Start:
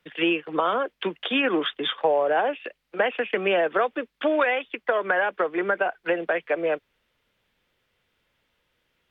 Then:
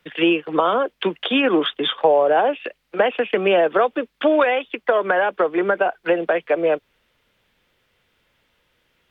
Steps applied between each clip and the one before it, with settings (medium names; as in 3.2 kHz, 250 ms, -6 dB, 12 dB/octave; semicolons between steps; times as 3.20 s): dynamic bell 1.9 kHz, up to -6 dB, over -38 dBFS, Q 1.3; trim +6.5 dB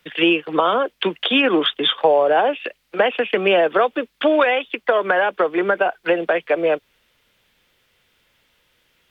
treble shelf 2.7 kHz +7.5 dB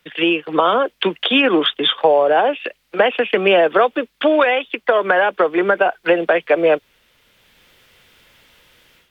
level rider gain up to 11.5 dB; trim -1 dB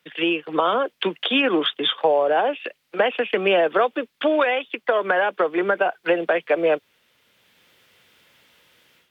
high-pass 110 Hz 12 dB/octave; trim -5 dB